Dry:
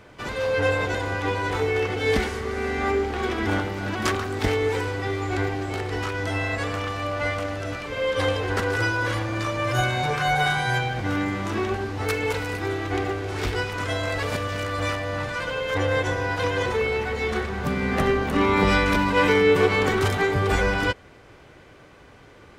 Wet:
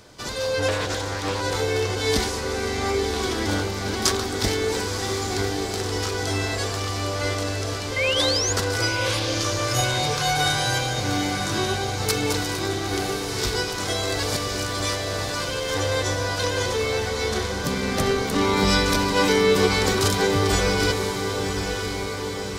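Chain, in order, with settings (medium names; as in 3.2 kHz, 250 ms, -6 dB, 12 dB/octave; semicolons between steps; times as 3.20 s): resonant high shelf 3.4 kHz +10.5 dB, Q 1.5; 7.96–8.53 s: painted sound rise 2–7.1 kHz -24 dBFS; on a send: echo that smears into a reverb 1025 ms, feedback 62%, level -6.5 dB; 0.68–1.41 s: on the sum: loudspeaker Doppler distortion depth 0.31 ms; trim -1 dB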